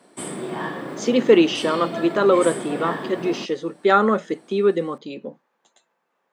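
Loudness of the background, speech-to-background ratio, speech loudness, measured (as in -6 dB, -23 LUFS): -30.5 LUFS, 10.0 dB, -20.5 LUFS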